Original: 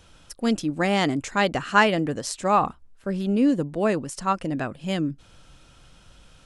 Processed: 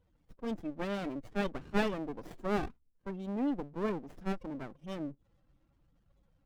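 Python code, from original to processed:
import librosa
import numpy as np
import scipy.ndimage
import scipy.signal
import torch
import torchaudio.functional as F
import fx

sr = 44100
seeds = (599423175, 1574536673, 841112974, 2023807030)

y = fx.spec_topn(x, sr, count=16)
y = fx.bass_treble(y, sr, bass_db=-8, treble_db=5)
y = fx.running_max(y, sr, window=33)
y = F.gain(torch.from_numpy(y), -8.5).numpy()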